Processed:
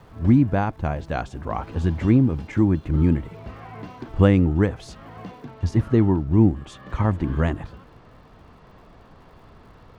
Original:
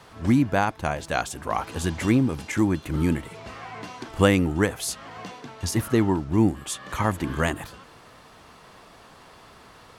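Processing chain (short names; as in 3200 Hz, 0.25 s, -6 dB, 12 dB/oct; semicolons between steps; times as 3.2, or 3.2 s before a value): LPF 5600 Hz 12 dB/oct; tilt -3 dB/oct; crackle 380/s -51 dBFS, from 5.45 s 130/s; gain -3 dB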